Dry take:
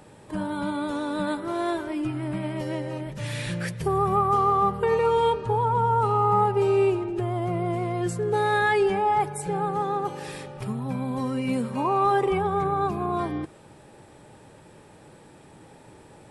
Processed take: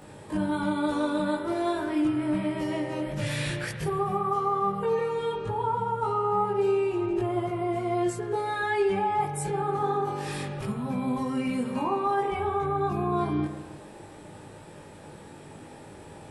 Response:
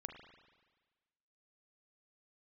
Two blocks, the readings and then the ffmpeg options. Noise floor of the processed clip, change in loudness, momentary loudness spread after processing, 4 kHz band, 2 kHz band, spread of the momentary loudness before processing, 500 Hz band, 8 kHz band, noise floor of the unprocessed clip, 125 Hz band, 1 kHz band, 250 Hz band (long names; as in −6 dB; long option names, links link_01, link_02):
−46 dBFS, −3.0 dB, 20 LU, −1.5 dB, −3.5 dB, 10 LU, −3.0 dB, 0.0 dB, −51 dBFS, −4.0 dB, −4.0 dB, +0.5 dB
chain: -filter_complex "[0:a]alimiter=limit=-23.5dB:level=0:latency=1:release=336,asplit=2[link_01][link_02];[1:a]atrim=start_sample=2205,adelay=20[link_03];[link_02][link_03]afir=irnorm=-1:irlink=0,volume=5.5dB[link_04];[link_01][link_04]amix=inputs=2:normalize=0"